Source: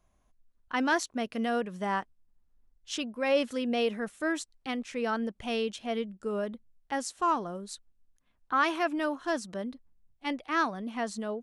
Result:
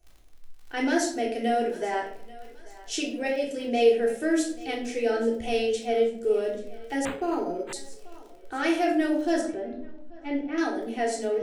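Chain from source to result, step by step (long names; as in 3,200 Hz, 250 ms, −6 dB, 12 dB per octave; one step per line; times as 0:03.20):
parametric band 3,600 Hz −5.5 dB 0.85 octaves
in parallel at +2 dB: brickwall limiter −23 dBFS, peak gain reduction 8 dB
0:03.27–0:03.67: on the sum: output level in coarse steps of 14 dB
phaser with its sweep stopped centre 460 Hz, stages 4
on a send: feedback echo with a high-pass in the loop 836 ms, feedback 46%, high-pass 420 Hz, level −19 dB
on the sum: surface crackle 35 per second −40 dBFS
0:09.41–0:10.58: head-to-tape spacing loss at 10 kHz 32 dB
rectangular room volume 790 cubic metres, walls furnished, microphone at 3.5 metres
0:07.05–0:07.73: linearly interpolated sample-rate reduction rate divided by 8×
level −2.5 dB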